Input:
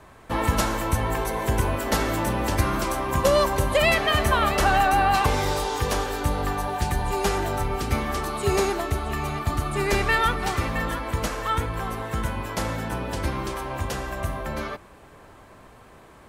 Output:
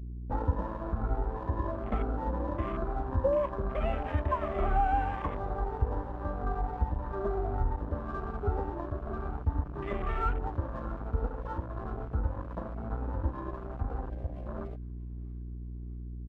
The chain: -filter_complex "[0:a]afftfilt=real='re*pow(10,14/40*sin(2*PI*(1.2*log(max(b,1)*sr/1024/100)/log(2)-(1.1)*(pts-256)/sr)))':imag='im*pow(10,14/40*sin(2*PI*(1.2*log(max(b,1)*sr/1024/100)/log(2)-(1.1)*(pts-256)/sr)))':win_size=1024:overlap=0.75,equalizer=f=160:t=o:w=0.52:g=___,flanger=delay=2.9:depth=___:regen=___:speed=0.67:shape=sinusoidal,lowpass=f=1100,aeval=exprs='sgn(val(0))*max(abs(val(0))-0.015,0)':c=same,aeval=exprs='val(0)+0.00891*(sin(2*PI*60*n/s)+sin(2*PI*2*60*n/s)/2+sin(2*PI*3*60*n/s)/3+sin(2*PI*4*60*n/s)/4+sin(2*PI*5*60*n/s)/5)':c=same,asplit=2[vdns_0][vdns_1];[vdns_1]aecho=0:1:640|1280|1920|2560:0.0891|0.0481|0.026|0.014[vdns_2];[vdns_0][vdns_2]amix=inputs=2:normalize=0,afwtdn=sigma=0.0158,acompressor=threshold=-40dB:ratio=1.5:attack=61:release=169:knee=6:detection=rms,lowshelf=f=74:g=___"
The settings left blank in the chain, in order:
-5.5, 1.4, -45, 7.5